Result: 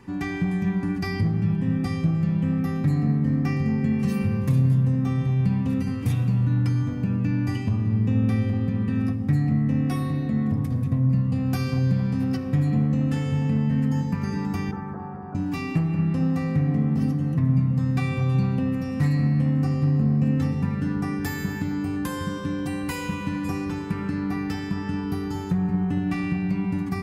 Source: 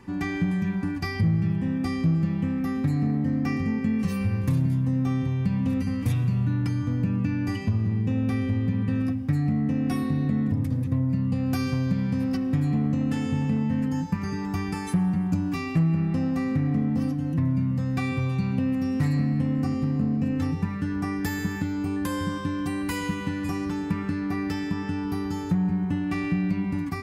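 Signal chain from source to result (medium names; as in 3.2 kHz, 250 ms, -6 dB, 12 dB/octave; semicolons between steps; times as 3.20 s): 14.71–15.35 s: elliptic band-pass 390–1500 Hz, stop band 40 dB; feedback echo behind a low-pass 228 ms, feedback 73%, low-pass 1.1 kHz, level -9 dB; reverberation RT60 0.70 s, pre-delay 3 ms, DRR 11 dB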